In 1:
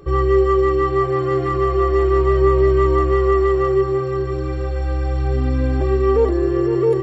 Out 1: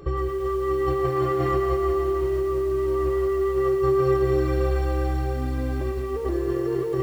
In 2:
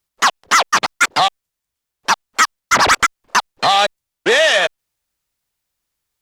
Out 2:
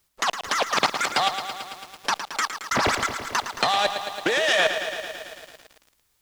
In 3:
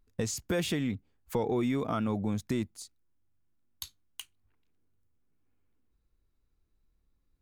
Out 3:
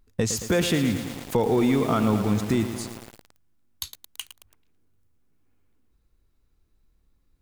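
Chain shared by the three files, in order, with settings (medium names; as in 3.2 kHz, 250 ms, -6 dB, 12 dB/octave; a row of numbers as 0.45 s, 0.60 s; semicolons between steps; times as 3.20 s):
compressor with a negative ratio -21 dBFS, ratio -1; bit-crushed delay 111 ms, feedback 80%, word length 7-bit, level -9 dB; normalise loudness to -24 LUFS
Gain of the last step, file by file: -4.0 dB, -1.0 dB, +7.5 dB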